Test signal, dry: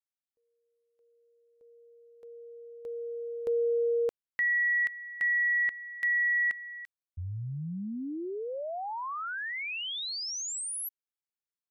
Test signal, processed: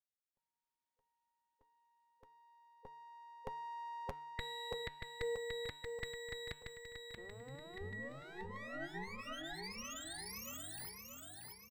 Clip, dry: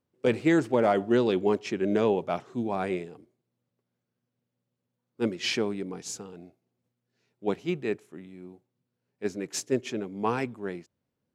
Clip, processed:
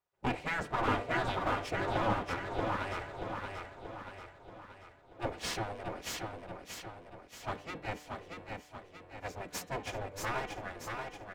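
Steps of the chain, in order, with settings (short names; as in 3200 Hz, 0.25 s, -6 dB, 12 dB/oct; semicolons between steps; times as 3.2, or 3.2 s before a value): minimum comb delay 4.1 ms; high shelf 3400 Hz -8 dB; feedback echo 0.632 s, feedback 51%, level -4.5 dB; spectral gate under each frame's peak -10 dB weak; de-hum 149 Hz, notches 28; gain +1 dB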